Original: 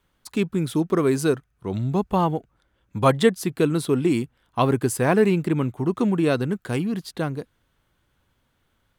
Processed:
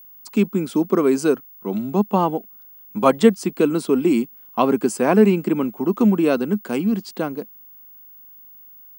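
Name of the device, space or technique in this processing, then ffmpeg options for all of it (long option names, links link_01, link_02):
old television with a line whistle: -af "highpass=frequency=210:width=0.5412,highpass=frequency=210:width=1.3066,equalizer=frequency=210:width_type=q:width=4:gain=8,equalizer=frequency=1800:width_type=q:width=4:gain=-7,equalizer=frequency=3700:width_type=q:width=4:gain=-8,lowpass=frequency=8700:width=0.5412,lowpass=frequency=8700:width=1.3066,aeval=exprs='val(0)+0.00562*sin(2*PI*15625*n/s)':channel_layout=same,volume=3dB"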